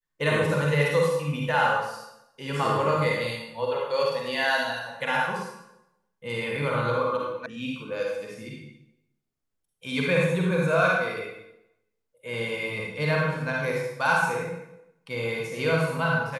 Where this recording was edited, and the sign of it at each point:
7.46 sound cut off

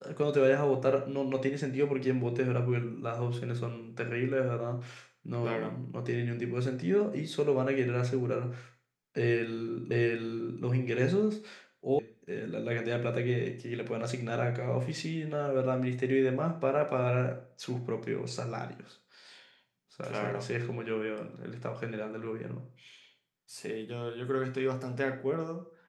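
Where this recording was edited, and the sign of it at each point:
9.91 repeat of the last 0.72 s
11.99 sound cut off

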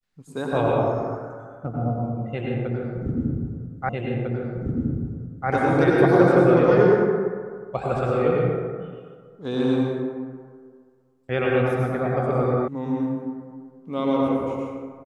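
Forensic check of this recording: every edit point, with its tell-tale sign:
3.89 repeat of the last 1.6 s
12.68 sound cut off

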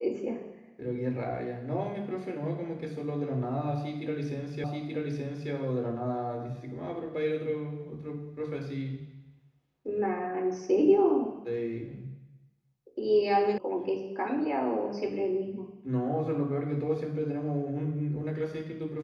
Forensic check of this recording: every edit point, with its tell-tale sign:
4.64 repeat of the last 0.88 s
13.58 sound cut off

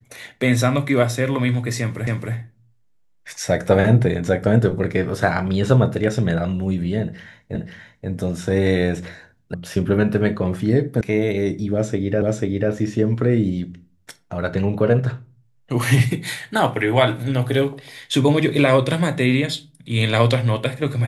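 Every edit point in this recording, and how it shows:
2.07 repeat of the last 0.27 s
7.55 repeat of the last 0.53 s
9.54 sound cut off
11.01 sound cut off
12.22 repeat of the last 0.49 s

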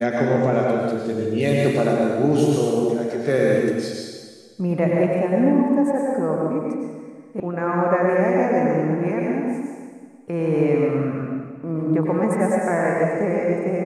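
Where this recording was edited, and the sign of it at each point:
7.4 sound cut off

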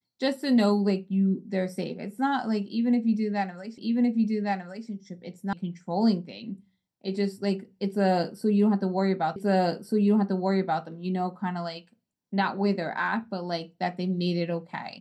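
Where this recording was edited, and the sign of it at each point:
3.78 repeat of the last 1.11 s
5.53 sound cut off
9.36 repeat of the last 1.48 s

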